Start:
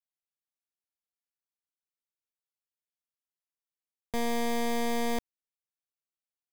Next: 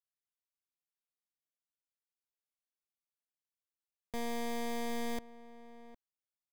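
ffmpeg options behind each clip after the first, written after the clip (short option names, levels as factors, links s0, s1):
-filter_complex "[0:a]asplit=2[s0][s1];[s1]adelay=758,volume=0.158,highshelf=f=4000:g=-17.1[s2];[s0][s2]amix=inputs=2:normalize=0,volume=0.422"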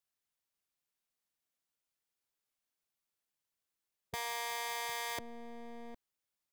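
-af "afftfilt=real='re*lt(hypot(re,im),0.0501)':imag='im*lt(hypot(re,im),0.0501)':win_size=1024:overlap=0.75,volume=1.88"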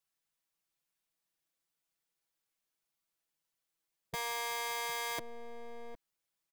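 -af "aecho=1:1:6.1:0.67"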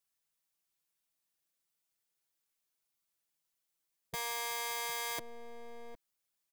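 -af "highshelf=f=4800:g=5.5,volume=0.794"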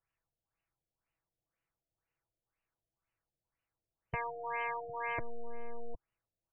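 -af "lowshelf=f=140:t=q:w=1.5:g=8.5,afftfilt=real='re*lt(b*sr/1024,710*pow(3100/710,0.5+0.5*sin(2*PI*2*pts/sr)))':imag='im*lt(b*sr/1024,710*pow(3100/710,0.5+0.5*sin(2*PI*2*pts/sr)))':win_size=1024:overlap=0.75,volume=1.68"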